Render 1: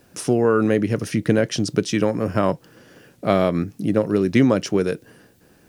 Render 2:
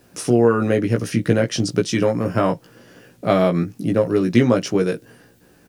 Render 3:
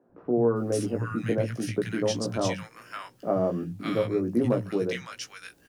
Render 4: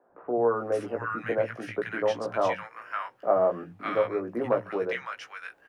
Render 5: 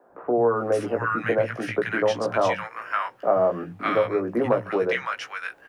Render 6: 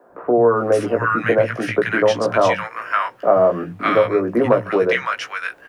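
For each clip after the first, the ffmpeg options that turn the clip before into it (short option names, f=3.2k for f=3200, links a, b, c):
-filter_complex "[0:a]asplit=2[a][b];[b]adelay=17,volume=-4dB[c];[a][c]amix=inputs=2:normalize=0"
-filter_complex "[0:a]acrossover=split=170|1200[a][b][c];[a]adelay=90[d];[c]adelay=560[e];[d][b][e]amix=inputs=3:normalize=0,volume=-7.5dB"
-filter_complex "[0:a]acrossover=split=540 2200:gain=0.1 1 0.0708[a][b][c];[a][b][c]amix=inputs=3:normalize=0,volume=7.5dB"
-filter_complex "[0:a]acrossover=split=180|3000[a][b][c];[b]acompressor=threshold=-29dB:ratio=2[d];[a][d][c]amix=inputs=3:normalize=0,volume=8dB"
-af "bandreject=f=810:w=12,volume=6.5dB"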